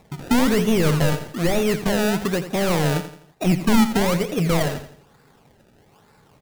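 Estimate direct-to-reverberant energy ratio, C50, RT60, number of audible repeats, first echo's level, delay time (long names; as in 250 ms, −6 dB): no reverb audible, no reverb audible, no reverb audible, 3, −11.5 dB, 84 ms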